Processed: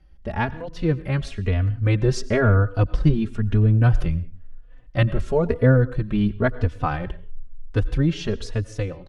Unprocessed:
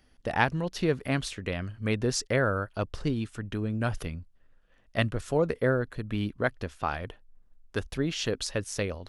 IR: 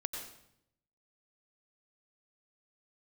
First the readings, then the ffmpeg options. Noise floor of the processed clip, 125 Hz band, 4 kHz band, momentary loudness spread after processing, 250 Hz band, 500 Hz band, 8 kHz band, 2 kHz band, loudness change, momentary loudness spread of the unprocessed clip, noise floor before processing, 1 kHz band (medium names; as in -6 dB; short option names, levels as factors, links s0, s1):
-44 dBFS, +13.0 dB, -1.5 dB, 11 LU, +7.5 dB, +5.0 dB, no reading, +2.0 dB, +8.0 dB, 8 LU, -62 dBFS, +3.0 dB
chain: -filter_complex "[0:a]aemphasis=mode=reproduction:type=bsi,dynaudnorm=f=210:g=13:m=2.37,asplit=2[s0][s1];[1:a]atrim=start_sample=2205,afade=t=out:st=0.25:d=0.01,atrim=end_sample=11466[s2];[s1][s2]afir=irnorm=-1:irlink=0,volume=0.224[s3];[s0][s3]amix=inputs=2:normalize=0,asplit=2[s4][s5];[s5]adelay=3.4,afreqshift=1[s6];[s4][s6]amix=inputs=2:normalize=1"